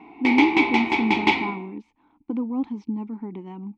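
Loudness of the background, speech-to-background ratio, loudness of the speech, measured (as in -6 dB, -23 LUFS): -21.5 LUFS, -5.0 dB, -26.5 LUFS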